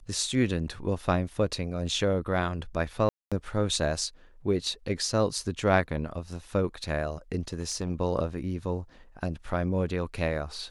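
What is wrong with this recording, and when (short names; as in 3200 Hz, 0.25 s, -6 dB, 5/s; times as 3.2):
3.09–3.32 gap 0.226 s
7.53–7.9 clipped -25 dBFS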